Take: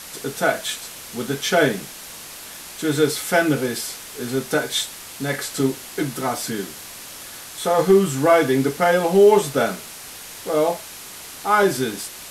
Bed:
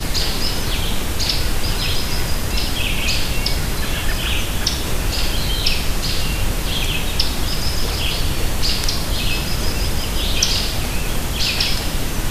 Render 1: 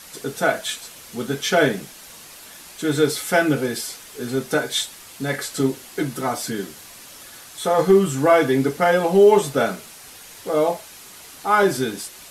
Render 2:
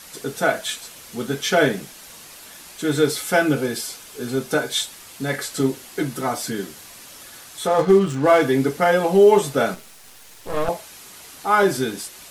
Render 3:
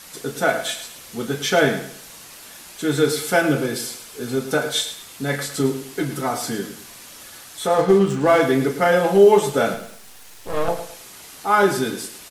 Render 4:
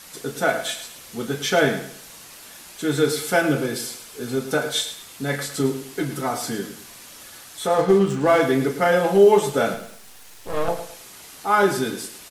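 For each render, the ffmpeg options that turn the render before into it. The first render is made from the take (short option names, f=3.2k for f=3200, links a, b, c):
-af "afftdn=nr=6:nf=-38"
-filter_complex "[0:a]asettb=1/sr,asplit=3[a][b][c];[a]atrim=end=3.214[d];[b]atrim=start=3.21:end=4.87,asetpts=PTS-STARTPTS,afade=t=in:d=0.004:c=qsin,afade=t=out:st=1.656:d=0.004:c=qsin,bandreject=f=1.9k:w=12[e];[c]atrim=start=4.866[f];[d][e]acrossfade=d=0.004:c1=hsin:c2=qsin[g];[g][f]acrossfade=d=0.004:c1=qsin:c2=hsin,asettb=1/sr,asplit=3[h][i][j];[h]atrim=end=7.674[k];[i]atrim=start=7.67:end=8.42,asetpts=PTS-STARTPTS,afade=t=in:d=0.004:c=qsin,afade=t=out:st=0.746:d=0.004:c=qsin,adynamicsmooth=sensitivity=7.5:basefreq=1.5k[l];[j]atrim=start=8.416[m];[k][l]acrossfade=d=0.004:c1=hsin:c2=qsin[n];[n][m]acrossfade=d=0.004:c1=qsin:c2=hsin,asettb=1/sr,asplit=3[o][p][q];[o]atrim=end=9.744[r];[p]atrim=start=9.74:end=10.69,asetpts=PTS-STARTPTS,afade=t=in:d=0.004:c=qsin,afade=t=out:st=0.946:d=0.004:c=qsin,aeval=exprs='max(val(0),0)':c=same[s];[q]atrim=start=10.686[t];[r][s]acrossfade=d=0.004:c1=hsin:c2=qsin[u];[u][t]acrossfade=d=0.004:c1=qsin:c2=hsin"
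-filter_complex "[0:a]asplit=2[a][b];[b]adelay=35,volume=-12dB[c];[a][c]amix=inputs=2:normalize=0,asplit=2[d][e];[e]aecho=0:1:107|214|321:0.282|0.0874|0.0271[f];[d][f]amix=inputs=2:normalize=0"
-af "volume=-1.5dB"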